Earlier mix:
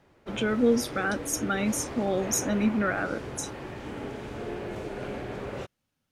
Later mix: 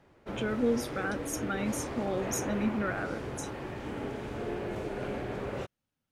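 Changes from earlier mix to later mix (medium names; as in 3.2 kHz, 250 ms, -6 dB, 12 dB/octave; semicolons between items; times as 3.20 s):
speech -5.5 dB; master: add peaking EQ 5.3 kHz -2.5 dB 2.2 oct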